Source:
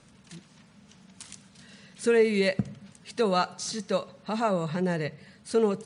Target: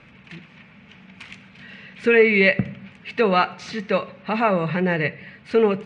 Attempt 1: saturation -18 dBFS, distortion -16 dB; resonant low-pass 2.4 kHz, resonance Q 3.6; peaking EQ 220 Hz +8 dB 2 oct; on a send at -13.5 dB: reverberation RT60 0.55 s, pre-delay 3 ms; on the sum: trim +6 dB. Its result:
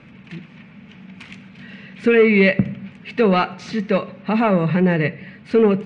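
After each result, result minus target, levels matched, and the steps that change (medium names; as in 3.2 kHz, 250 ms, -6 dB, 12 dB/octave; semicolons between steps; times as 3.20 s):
saturation: distortion +13 dB; 250 Hz band +4.5 dB
change: saturation -10 dBFS, distortion -29 dB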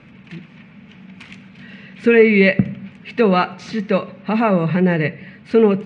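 250 Hz band +4.0 dB
remove: peaking EQ 220 Hz +8 dB 2 oct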